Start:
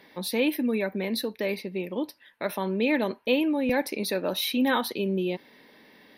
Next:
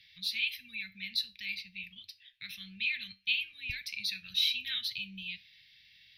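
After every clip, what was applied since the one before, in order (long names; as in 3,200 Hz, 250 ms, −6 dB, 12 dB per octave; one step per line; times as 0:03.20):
elliptic band-stop filter 110–2,500 Hz, stop band 50 dB
high shelf with overshoot 6,400 Hz −12 dB, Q 1.5
tuned comb filter 64 Hz, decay 0.28 s, harmonics odd, mix 50%
level +4.5 dB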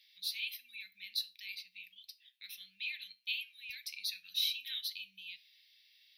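first-order pre-emphasis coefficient 0.97
level +1 dB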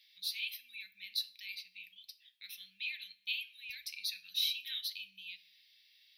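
rectangular room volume 3,900 cubic metres, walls furnished, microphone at 0.54 metres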